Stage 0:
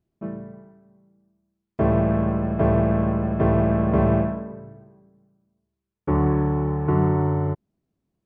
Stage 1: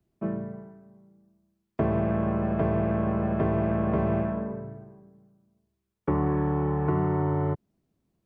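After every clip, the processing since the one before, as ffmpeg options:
-filter_complex "[0:a]acrossover=split=120|330|1300[s0][s1][s2][s3];[s0]acompressor=threshold=0.0126:ratio=4[s4];[s1]acompressor=threshold=0.0282:ratio=4[s5];[s2]acompressor=threshold=0.0251:ratio=4[s6];[s3]acompressor=threshold=0.00501:ratio=4[s7];[s4][s5][s6][s7]amix=inputs=4:normalize=0,volume=1.33"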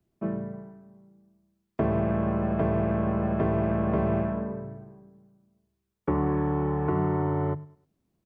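-af "bandreject=f=50:t=h:w=6,bandreject=f=100:t=h:w=6,bandreject=f=150:t=h:w=6,aecho=1:1:102|204|306:0.075|0.0277|0.0103"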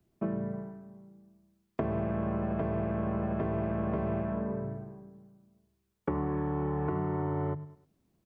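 -af "acompressor=threshold=0.0282:ratio=6,volume=1.33"

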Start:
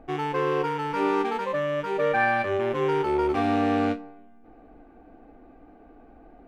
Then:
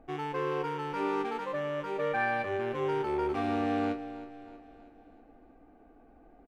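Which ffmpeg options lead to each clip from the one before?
-af "aecho=1:1:320|640|960|1280|1600:0.178|0.0889|0.0445|0.0222|0.0111,volume=0.447"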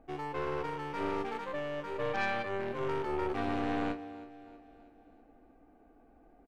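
-af "aeval=exprs='0.119*(cos(1*acos(clip(val(0)/0.119,-1,1)))-cos(1*PI/2))+0.0237*(cos(4*acos(clip(val(0)/0.119,-1,1)))-cos(4*PI/2))':c=same,volume=0.668"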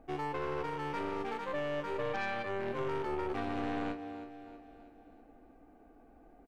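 -af "alimiter=level_in=1.41:limit=0.0631:level=0:latency=1:release=179,volume=0.708,volume=1.26"

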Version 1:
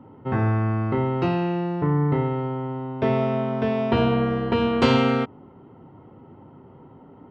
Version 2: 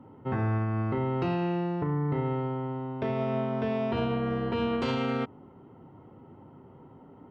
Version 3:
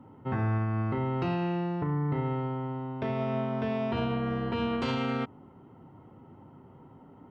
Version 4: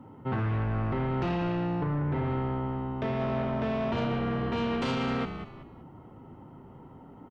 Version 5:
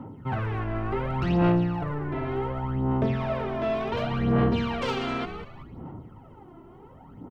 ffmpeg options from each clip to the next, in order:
-af "alimiter=limit=0.15:level=0:latency=1:release=104,volume=0.631"
-af "equalizer=f=440:w=1.5:g=-3.5"
-filter_complex "[0:a]asplit=4[s0][s1][s2][s3];[s1]adelay=190,afreqshift=-61,volume=0.282[s4];[s2]adelay=380,afreqshift=-122,volume=0.0902[s5];[s3]adelay=570,afreqshift=-183,volume=0.0288[s6];[s0][s4][s5][s6]amix=inputs=4:normalize=0,aeval=exprs='0.112*sin(PI/2*1.78*val(0)/0.112)':c=same,volume=0.501"
-af "aphaser=in_gain=1:out_gain=1:delay=3:decay=0.66:speed=0.68:type=sinusoidal"

